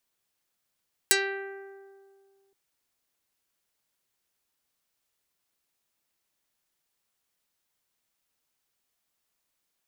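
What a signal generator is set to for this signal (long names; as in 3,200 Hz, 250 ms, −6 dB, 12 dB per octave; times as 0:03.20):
Karplus-Strong string G4, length 1.42 s, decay 2.10 s, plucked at 0.32, dark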